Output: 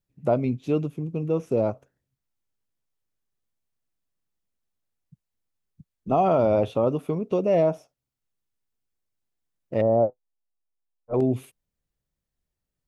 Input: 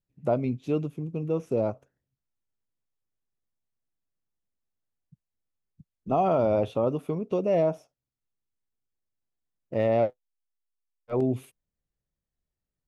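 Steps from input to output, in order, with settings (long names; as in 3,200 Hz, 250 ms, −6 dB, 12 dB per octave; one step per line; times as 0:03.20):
0:09.81–0:11.14: low-pass filter 1,000 Hz 24 dB per octave
level +3 dB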